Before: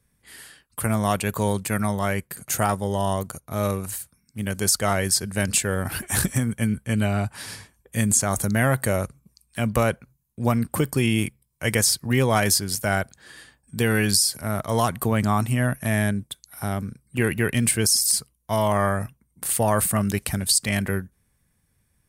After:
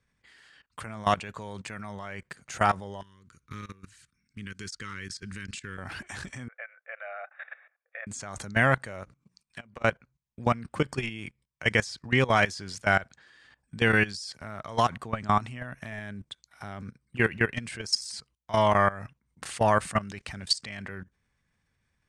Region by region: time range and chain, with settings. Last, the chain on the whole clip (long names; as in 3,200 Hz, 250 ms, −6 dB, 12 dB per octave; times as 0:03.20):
0:03.01–0:05.78: downward compressor 10 to 1, threshold −30 dBFS + Butterworth band-reject 690 Hz, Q 0.81
0:06.48–0:08.07: linear-phase brick-wall band-pass 430–3,800 Hz + phaser with its sweep stopped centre 640 Hz, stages 8
0:09.03–0:09.84: downward compressor 10 to 1, threshold −35 dBFS + mains-hum notches 60/120/180/240/300/360 Hz
whole clip: low-pass filter 7,100 Hz 24 dB per octave; parametric band 1,800 Hz +7.5 dB 2.7 octaves; output level in coarse steps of 18 dB; level −3 dB